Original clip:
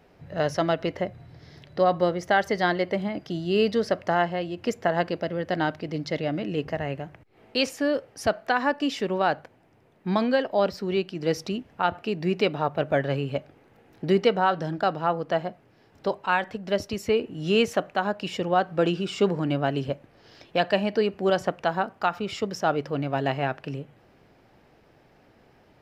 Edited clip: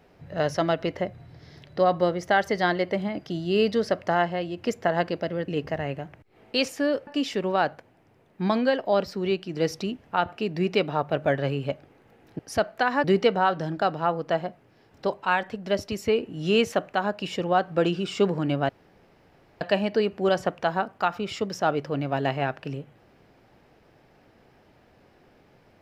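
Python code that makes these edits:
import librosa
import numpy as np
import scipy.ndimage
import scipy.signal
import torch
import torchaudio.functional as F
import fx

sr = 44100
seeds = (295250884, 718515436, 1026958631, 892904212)

y = fx.edit(x, sr, fx.cut(start_s=5.48, length_s=1.01),
    fx.move(start_s=8.08, length_s=0.65, to_s=14.05),
    fx.room_tone_fill(start_s=19.7, length_s=0.92), tone=tone)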